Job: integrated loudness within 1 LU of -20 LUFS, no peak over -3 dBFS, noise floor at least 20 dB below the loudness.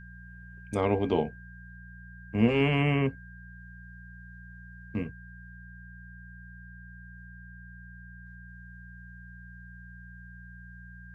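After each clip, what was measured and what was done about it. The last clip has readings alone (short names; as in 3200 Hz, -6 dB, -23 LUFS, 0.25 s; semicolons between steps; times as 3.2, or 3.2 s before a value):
hum 60 Hz; harmonics up to 180 Hz; hum level -45 dBFS; steady tone 1600 Hz; tone level -50 dBFS; loudness -28.5 LUFS; peak -10.0 dBFS; loudness target -20.0 LUFS
-> de-hum 60 Hz, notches 3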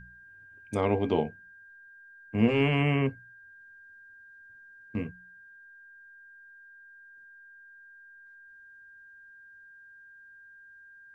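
hum none; steady tone 1600 Hz; tone level -50 dBFS
-> notch 1600 Hz, Q 30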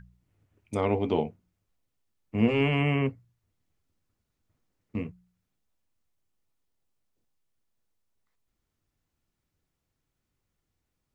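steady tone none; loudness -28.0 LUFS; peak -10.0 dBFS; loudness target -20.0 LUFS
-> gain +8 dB; limiter -3 dBFS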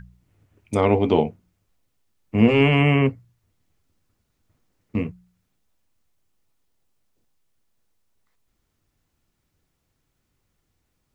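loudness -20.5 LUFS; peak -3.0 dBFS; noise floor -74 dBFS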